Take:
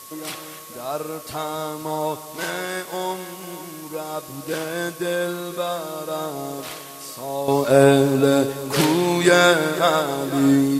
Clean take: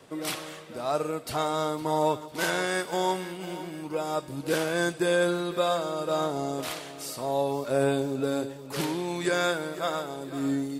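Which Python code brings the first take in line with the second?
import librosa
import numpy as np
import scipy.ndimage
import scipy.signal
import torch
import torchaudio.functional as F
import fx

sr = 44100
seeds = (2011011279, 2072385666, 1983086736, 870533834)

y = fx.notch(x, sr, hz=1100.0, q=30.0)
y = fx.noise_reduce(y, sr, print_start_s=0.34, print_end_s=0.84, reduce_db=6.0)
y = fx.fix_echo_inverse(y, sr, delay_ms=247, level_db=-17.0)
y = fx.gain(y, sr, db=fx.steps((0.0, 0.0), (7.48, -11.5)))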